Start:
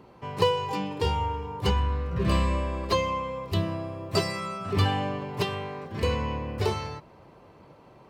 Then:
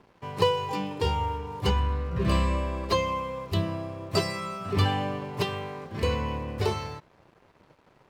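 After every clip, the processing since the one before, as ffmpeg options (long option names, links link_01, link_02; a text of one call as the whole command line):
ffmpeg -i in.wav -af "aeval=exprs='sgn(val(0))*max(abs(val(0))-0.00211,0)':channel_layout=same" out.wav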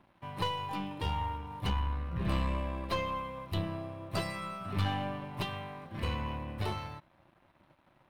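ffmpeg -i in.wav -af "superequalizer=7b=0.316:14b=0.447:15b=0.355,aeval=exprs='(tanh(11.2*val(0)+0.45)-tanh(0.45))/11.2':channel_layout=same,volume=-3.5dB" out.wav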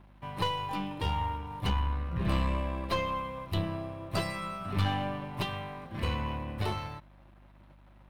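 ffmpeg -i in.wav -af "aeval=exprs='val(0)+0.00126*(sin(2*PI*50*n/s)+sin(2*PI*2*50*n/s)/2+sin(2*PI*3*50*n/s)/3+sin(2*PI*4*50*n/s)/4+sin(2*PI*5*50*n/s)/5)':channel_layout=same,volume=2.5dB" out.wav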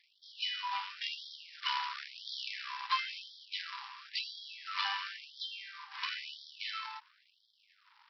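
ffmpeg -i in.wav -af "aresample=11025,acrusher=bits=2:mode=log:mix=0:aa=0.000001,aresample=44100,afftfilt=real='re*gte(b*sr/1024,800*pow(3200/800,0.5+0.5*sin(2*PI*0.97*pts/sr)))':imag='im*gte(b*sr/1024,800*pow(3200/800,0.5+0.5*sin(2*PI*0.97*pts/sr)))':win_size=1024:overlap=0.75,volume=1dB" out.wav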